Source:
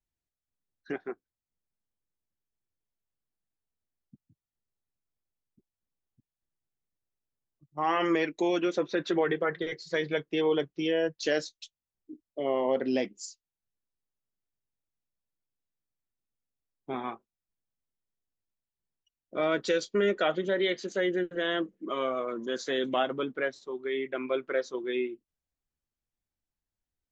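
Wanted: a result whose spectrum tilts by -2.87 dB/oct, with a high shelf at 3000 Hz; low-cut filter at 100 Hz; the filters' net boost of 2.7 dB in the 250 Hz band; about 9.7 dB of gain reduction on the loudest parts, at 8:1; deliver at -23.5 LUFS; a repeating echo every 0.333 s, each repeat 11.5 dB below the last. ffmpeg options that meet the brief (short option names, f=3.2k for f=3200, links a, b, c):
-af "highpass=100,equalizer=f=250:t=o:g=4,highshelf=f=3k:g=3.5,acompressor=threshold=-31dB:ratio=8,aecho=1:1:333|666|999:0.266|0.0718|0.0194,volume=13dB"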